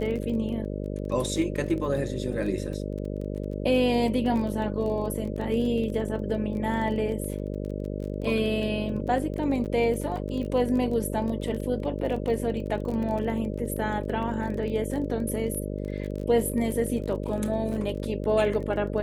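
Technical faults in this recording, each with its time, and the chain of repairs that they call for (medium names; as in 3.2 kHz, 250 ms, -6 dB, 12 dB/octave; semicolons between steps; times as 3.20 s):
buzz 50 Hz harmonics 12 -32 dBFS
crackle 21 per s -33 dBFS
9.65–9.66 s: dropout 8.7 ms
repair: de-click; de-hum 50 Hz, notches 12; interpolate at 9.65 s, 8.7 ms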